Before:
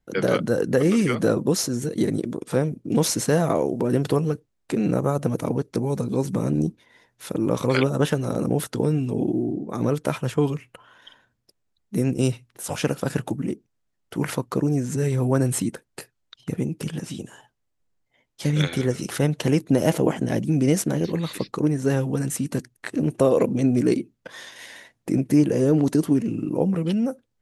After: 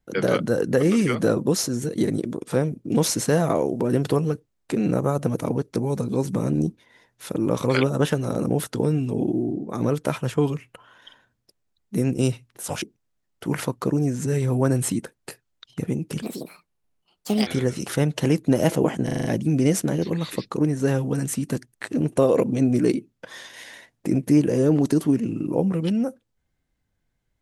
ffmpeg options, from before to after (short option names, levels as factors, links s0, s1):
-filter_complex "[0:a]asplit=9[s0][s1][s2][s3][s4][s5][s6][s7][s8];[s0]atrim=end=12.822[s9];[s1]atrim=start=13.518:end=16.924[s10];[s2]atrim=start=16.92:end=18.69,asetpts=PTS-STARTPTS,asetrate=62622,aresample=44100[s11];[s3]atrim=start=18.686:end=20.312[s12];[s4]atrim=start=20.268:end=20.312[s13];[s5]atrim=start=20.268:end=20.312[s14];[s6]atrim=start=20.268:end=20.312[s15];[s7]atrim=start=20.268:end=20.312[s16];[s8]atrim=start=20.268[s17];[s9][s10]acrossfade=d=0.004:c1=hsin:c2=hsin[s18];[s18][s11]acrossfade=d=0.004:c1=hsin:c2=hsin[s19];[s19][s12]acrossfade=d=0.004:c1=hsin:c2=hsin[s20];[s20][s13]acrossfade=d=0.004:c1=hsin:c2=hsin[s21];[s21][s14]acrossfade=d=0.004:c1=hsin:c2=hsin[s22];[s22][s15]acrossfade=d=0.004:c1=hsin:c2=hsin[s23];[s23][s16]acrossfade=d=0.004:c1=hsin:c2=hsin[s24];[s24][s17]acrossfade=d=0.004:c1=hsin:c2=hsin"